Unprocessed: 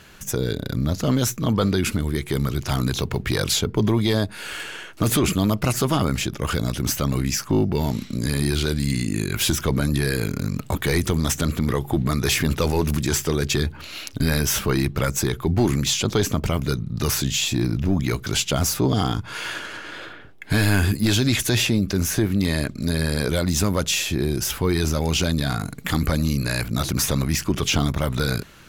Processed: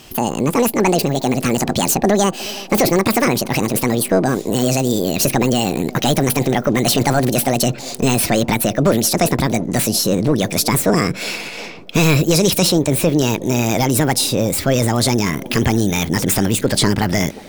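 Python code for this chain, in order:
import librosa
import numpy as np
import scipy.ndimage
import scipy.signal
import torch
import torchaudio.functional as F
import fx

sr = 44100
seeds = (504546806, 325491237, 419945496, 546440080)

y = fx.speed_glide(x, sr, from_pct=188, to_pct=140)
y = fx.echo_wet_bandpass(y, sr, ms=362, feedback_pct=64, hz=450.0, wet_db=-18)
y = y * 10.0 ** (5.5 / 20.0)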